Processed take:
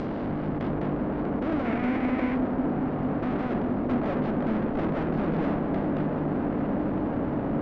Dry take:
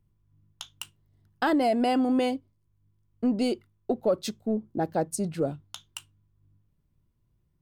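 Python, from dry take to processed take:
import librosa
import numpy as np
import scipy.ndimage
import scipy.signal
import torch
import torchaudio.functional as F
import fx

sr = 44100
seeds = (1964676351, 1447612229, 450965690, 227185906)

p1 = fx.bin_compress(x, sr, power=0.2)
p2 = scipy.signal.sosfilt(scipy.signal.butter(4, 5000.0, 'lowpass', fs=sr, output='sos'), p1)
p3 = fx.tilt_shelf(p2, sr, db=10.0, hz=690.0)
p4 = fx.tube_stage(p3, sr, drive_db=28.0, bias=0.7)
p5 = p4 + fx.echo_opening(p4, sr, ms=232, hz=200, octaves=1, feedback_pct=70, wet_db=0, dry=0)
p6 = fx.env_lowpass_down(p5, sr, base_hz=2100.0, full_db=-24.5)
y = fx.peak_eq(p6, sr, hz=2200.0, db=9.5, octaves=0.51, at=(1.65, 2.35))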